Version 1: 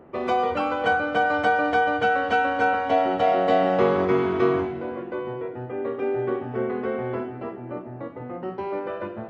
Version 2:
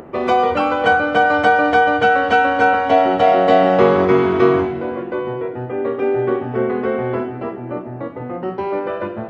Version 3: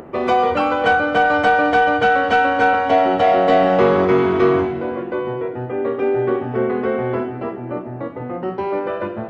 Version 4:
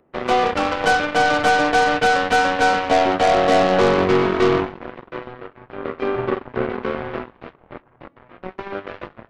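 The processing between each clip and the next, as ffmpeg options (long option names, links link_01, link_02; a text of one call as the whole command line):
ffmpeg -i in.wav -af "acompressor=mode=upward:threshold=-40dB:ratio=2.5,volume=7.5dB" out.wav
ffmpeg -i in.wav -af "asoftclip=type=tanh:threshold=-5.5dB" out.wav
ffmpeg -i in.wav -af "aeval=exprs='0.501*(cos(1*acos(clip(val(0)/0.501,-1,1)))-cos(1*PI/2))+0.0501*(cos(4*acos(clip(val(0)/0.501,-1,1)))-cos(4*PI/2))+0.0224*(cos(6*acos(clip(val(0)/0.501,-1,1)))-cos(6*PI/2))+0.0794*(cos(7*acos(clip(val(0)/0.501,-1,1)))-cos(7*PI/2))':channel_layout=same,volume=-2dB" out.wav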